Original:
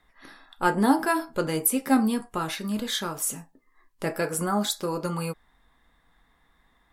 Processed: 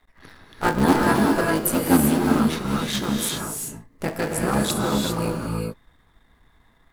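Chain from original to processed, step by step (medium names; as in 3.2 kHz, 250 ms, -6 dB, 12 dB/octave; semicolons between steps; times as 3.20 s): cycle switcher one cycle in 3, muted; bass shelf 220 Hz +5 dB; gated-style reverb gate 420 ms rising, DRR 0 dB; trim +2 dB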